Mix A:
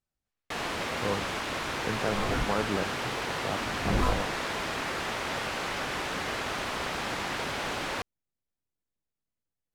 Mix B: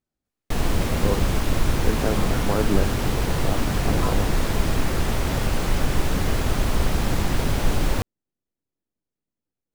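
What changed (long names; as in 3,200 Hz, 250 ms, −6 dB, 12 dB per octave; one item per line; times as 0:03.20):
speech: add parametric band 300 Hz +9.5 dB 1.8 octaves
first sound: remove resonant band-pass 1,900 Hz, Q 0.52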